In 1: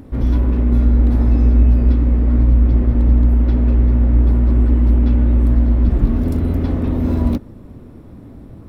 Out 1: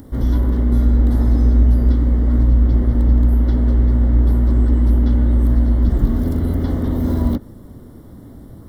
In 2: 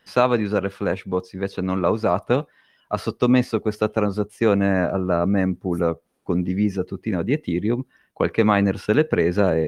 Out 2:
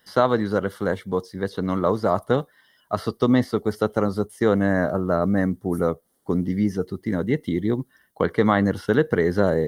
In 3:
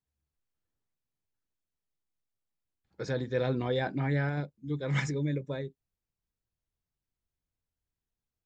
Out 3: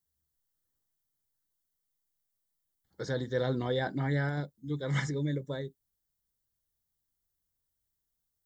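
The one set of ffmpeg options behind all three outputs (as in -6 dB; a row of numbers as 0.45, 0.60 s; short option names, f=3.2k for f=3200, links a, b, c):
-filter_complex "[0:a]acrossover=split=3800[a][b];[b]acompressor=threshold=-51dB:ratio=4:attack=1:release=60[c];[a][c]amix=inputs=2:normalize=0,asuperstop=centerf=2500:order=4:qfactor=3.3,aemphasis=mode=production:type=50kf,volume=-1dB"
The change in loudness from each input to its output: -1.0, -1.0, -1.0 LU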